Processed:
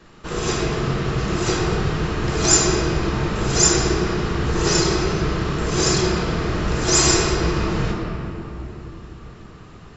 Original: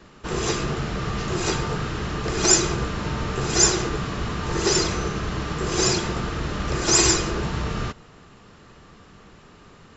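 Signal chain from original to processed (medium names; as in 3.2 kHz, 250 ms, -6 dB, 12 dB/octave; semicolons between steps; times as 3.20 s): simulated room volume 190 m³, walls hard, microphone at 0.6 m; trim -1 dB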